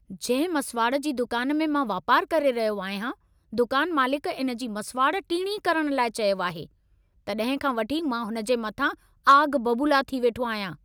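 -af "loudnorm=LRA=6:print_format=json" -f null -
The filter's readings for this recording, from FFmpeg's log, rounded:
"input_i" : "-24.8",
"input_tp" : "-7.8",
"input_lra" : "2.7",
"input_thresh" : "-35.0",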